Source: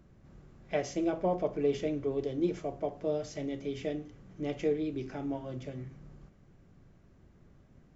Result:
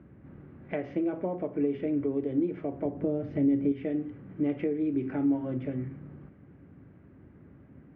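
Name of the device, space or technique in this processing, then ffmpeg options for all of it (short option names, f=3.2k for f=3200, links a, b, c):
bass amplifier: -filter_complex "[0:a]asettb=1/sr,asplit=3[a][b][c];[a]atrim=end=2.854[d];[b]atrim=start=2.85:end=3.72,asetpts=PTS-STARTPTS,afade=t=in:d=0.004:c=qsin,afade=t=out:st=0.866:d=0.004:c=qsin,lowshelf=f=470:g=11[e];[c]atrim=start=3.716[f];[d][e]acrossfade=d=0.004:c1=hsin:c2=qsin[g];[g][f]acrossfade=d=0.004:c1=qsin:c2=hsin,acompressor=threshold=-36dB:ratio=4,highpass=f=67:w=0.5412,highpass=f=67:w=1.3066,equalizer=f=280:t=q:w=4:g=8,equalizer=f=690:t=q:w=4:g=-4,equalizer=f=1.1k:t=q:w=4:g=-3,lowpass=f=2.3k:w=0.5412,lowpass=f=2.3k:w=1.3066,volume=6.5dB"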